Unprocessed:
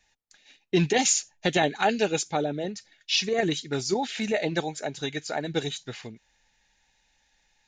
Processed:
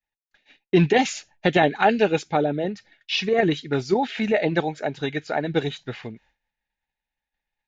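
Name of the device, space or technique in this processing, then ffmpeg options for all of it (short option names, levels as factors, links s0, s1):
hearing-loss simulation: -af "lowpass=2700,agate=range=0.0224:threshold=0.00158:ratio=3:detection=peak,volume=1.88"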